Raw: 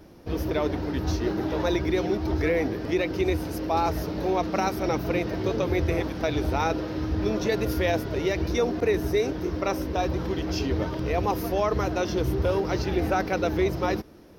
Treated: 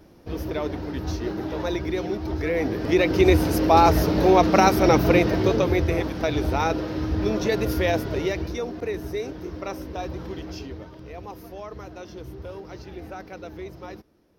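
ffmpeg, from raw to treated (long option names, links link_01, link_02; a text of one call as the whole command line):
ffmpeg -i in.wav -af "volume=9dB,afade=type=in:start_time=2.46:duration=0.92:silence=0.281838,afade=type=out:start_time=5.07:duration=0.79:silence=0.446684,afade=type=out:start_time=8.14:duration=0.44:silence=0.421697,afade=type=out:start_time=10.37:duration=0.47:silence=0.421697" out.wav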